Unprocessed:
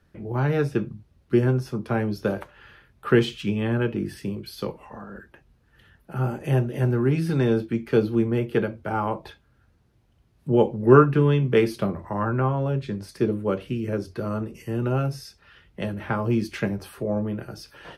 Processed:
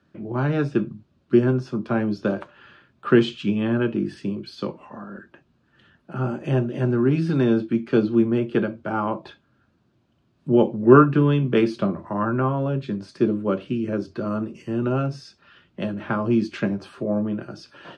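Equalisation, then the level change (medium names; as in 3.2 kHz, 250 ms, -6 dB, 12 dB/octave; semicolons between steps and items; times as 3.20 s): cabinet simulation 220–7200 Hz, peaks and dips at 460 Hz -9 dB, 820 Hz -6 dB, 2 kHz -7 dB, 5.7 kHz -4 dB; tilt EQ -1.5 dB/octave; +4.0 dB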